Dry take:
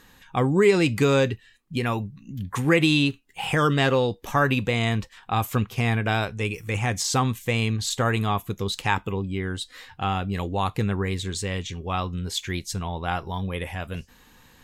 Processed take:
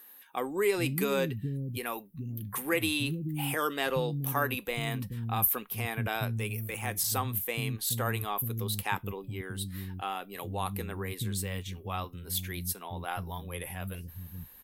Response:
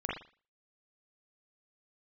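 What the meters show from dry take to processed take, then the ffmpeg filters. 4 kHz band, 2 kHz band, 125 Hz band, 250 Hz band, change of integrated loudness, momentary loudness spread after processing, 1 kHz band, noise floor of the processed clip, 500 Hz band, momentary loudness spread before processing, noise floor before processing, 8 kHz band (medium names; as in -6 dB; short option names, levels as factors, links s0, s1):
-8.0 dB, -8.0 dB, -8.5 dB, -10.5 dB, -7.5 dB, 10 LU, -8.0 dB, -53 dBFS, -9.0 dB, 11 LU, -55 dBFS, -2.5 dB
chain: -filter_complex "[0:a]aexciter=amount=12.1:drive=5.3:freq=9800,acrossover=split=260[s0][s1];[s0]adelay=430[s2];[s2][s1]amix=inputs=2:normalize=0,volume=0.398"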